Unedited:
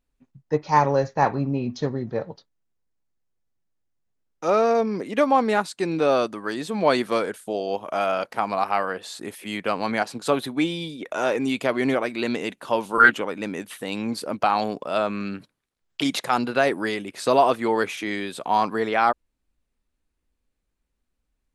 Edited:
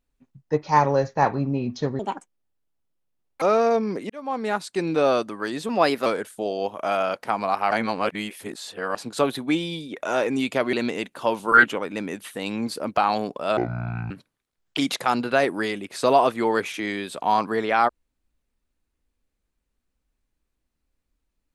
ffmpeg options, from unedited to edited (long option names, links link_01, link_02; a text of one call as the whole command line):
ffmpeg -i in.wav -filter_complex "[0:a]asplit=11[link_01][link_02][link_03][link_04][link_05][link_06][link_07][link_08][link_09][link_10][link_11];[link_01]atrim=end=1.994[link_12];[link_02]atrim=start=1.99:end=4.46,asetpts=PTS-STARTPTS,asetrate=76293,aresample=44100[link_13];[link_03]atrim=start=4.456:end=5.14,asetpts=PTS-STARTPTS,afade=type=out:start_time=0.68:duration=0.004:curve=hsin[link_14];[link_04]atrim=start=5.14:end=6.734,asetpts=PTS-STARTPTS,afade=type=in:duration=0.64[link_15];[link_05]atrim=start=6.73:end=7.15,asetpts=PTS-STARTPTS,asetrate=49833,aresample=44100,atrim=end_sample=16391,asetpts=PTS-STARTPTS[link_16];[link_06]atrim=start=7.146:end=8.802[link_17];[link_07]atrim=start=8.798:end=10.042,asetpts=PTS-STARTPTS,areverse[link_18];[link_08]atrim=start=10.038:end=11.822[link_19];[link_09]atrim=start=12.188:end=15.034[link_20];[link_10]atrim=start=15.03:end=15.34,asetpts=PTS-STARTPTS,asetrate=25578,aresample=44100[link_21];[link_11]atrim=start=15.336[link_22];[link_12][link_13]acrossfade=duration=0.004:curve1=hsin:curve2=hsin[link_23];[link_14][link_15]concat=n=2:v=0:a=1[link_24];[link_23][link_24]acrossfade=duration=0.004:curve1=hsin:curve2=hsin[link_25];[link_25][link_16]acrossfade=duration=0.004:curve1=hsin:curve2=hsin[link_26];[link_26][link_17]acrossfade=duration=0.004:curve1=hsin:curve2=hsin[link_27];[link_27][link_18]acrossfade=duration=0.004:curve1=hsin:curve2=hsin[link_28];[link_28][link_19]acrossfade=duration=0.004:curve1=hsin:curve2=hsin[link_29];[link_29][link_20]acrossfade=duration=0.004:curve1=hsin:curve2=hsin[link_30];[link_30][link_21]acrossfade=duration=0.004:curve1=hsin:curve2=hsin[link_31];[link_31][link_22]acrossfade=duration=0.004:curve1=hsin:curve2=hsin" out.wav